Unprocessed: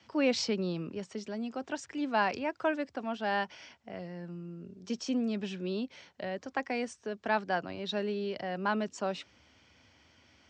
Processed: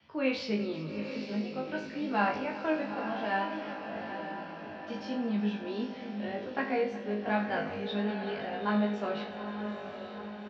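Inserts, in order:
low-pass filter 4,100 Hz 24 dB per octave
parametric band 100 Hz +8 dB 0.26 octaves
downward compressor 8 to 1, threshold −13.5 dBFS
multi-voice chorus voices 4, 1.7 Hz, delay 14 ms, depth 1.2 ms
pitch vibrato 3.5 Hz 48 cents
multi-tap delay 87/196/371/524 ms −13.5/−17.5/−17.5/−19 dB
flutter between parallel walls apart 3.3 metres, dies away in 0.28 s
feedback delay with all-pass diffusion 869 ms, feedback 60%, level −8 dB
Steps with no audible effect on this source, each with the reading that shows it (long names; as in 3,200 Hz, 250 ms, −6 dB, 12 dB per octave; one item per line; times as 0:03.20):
downward compressor, threshold −13.5 dBFS: peak of its input −16.0 dBFS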